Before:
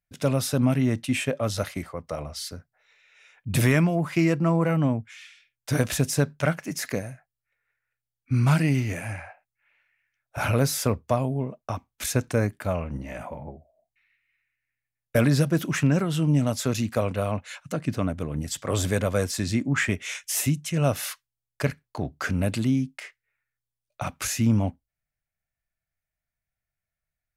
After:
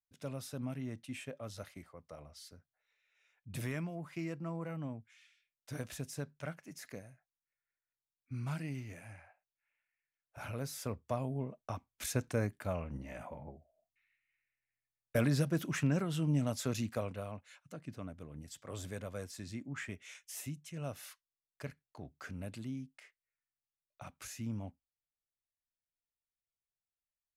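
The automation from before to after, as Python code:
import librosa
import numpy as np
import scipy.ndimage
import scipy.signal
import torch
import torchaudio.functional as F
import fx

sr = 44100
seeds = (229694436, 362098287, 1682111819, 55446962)

y = fx.gain(x, sr, db=fx.line((10.57, -18.5), (11.38, -10.0), (16.84, -10.0), (17.41, -18.5)))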